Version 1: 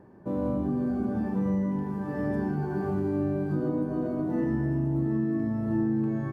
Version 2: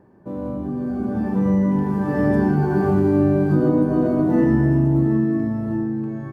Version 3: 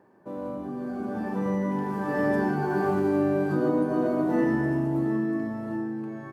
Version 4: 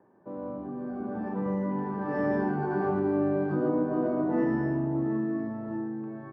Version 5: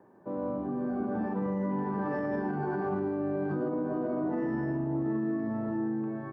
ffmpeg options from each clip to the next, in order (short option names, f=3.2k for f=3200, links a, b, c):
-af "dynaudnorm=f=290:g=9:m=11dB"
-af "highpass=f=590:p=1"
-filter_complex "[0:a]highshelf=f=5.2k:g=-9,acrossover=split=220|1600[a][b][c];[c]adynamicsmooth=sensitivity=5.5:basefreq=2.4k[d];[a][b][d]amix=inputs=3:normalize=0,volume=-2.5dB"
-af "alimiter=level_in=3dB:limit=-24dB:level=0:latency=1:release=121,volume=-3dB,volume=3.5dB"